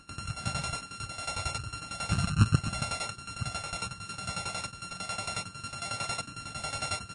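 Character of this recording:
a buzz of ramps at a fixed pitch in blocks of 32 samples
tremolo saw down 11 Hz, depth 85%
MP3

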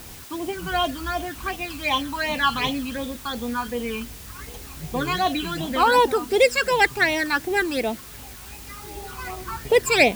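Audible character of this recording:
phaser sweep stages 12, 2.7 Hz, lowest notch 600–1,600 Hz
a quantiser's noise floor 8 bits, dither triangular

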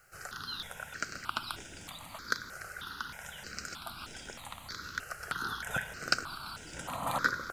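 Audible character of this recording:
a quantiser's noise floor 12 bits, dither triangular
notches that jump at a steady rate 3.2 Hz 970–4,300 Hz

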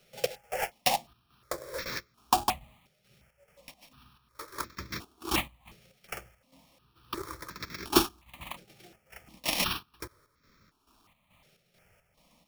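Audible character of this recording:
a buzz of ramps at a fixed pitch in blocks of 8 samples
chopped level 2.3 Hz, depth 60%, duty 60%
aliases and images of a low sample rate 7,900 Hz, jitter 20%
notches that jump at a steady rate 2.8 Hz 280–2,900 Hz

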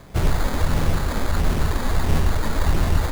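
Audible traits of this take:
phaser sweep stages 12, 1.5 Hz, lowest notch 110–2,000 Hz
aliases and images of a low sample rate 2,800 Hz, jitter 0%

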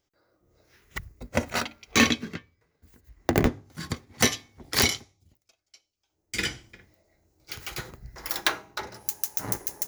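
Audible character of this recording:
background noise floor −79 dBFS
spectral slope −3.0 dB per octave

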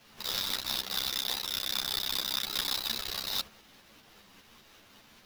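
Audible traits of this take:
a quantiser's noise floor 10 bits, dither none
tremolo saw up 5 Hz, depth 40%
aliases and images of a low sample rate 8,700 Hz, jitter 20%
a shimmering, thickened sound

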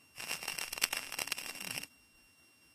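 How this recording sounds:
a buzz of ramps at a fixed pitch in blocks of 16 samples
tremolo saw down 4.2 Hz, depth 40%
a quantiser's noise floor 12 bits, dither none
Ogg Vorbis

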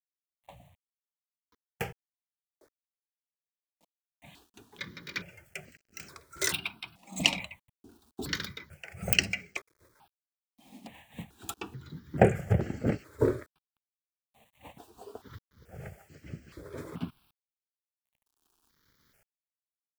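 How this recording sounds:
tremolo saw up 0.52 Hz, depth 95%
a quantiser's noise floor 12 bits, dither none
notches that jump at a steady rate 2.3 Hz 410–3,600 Hz

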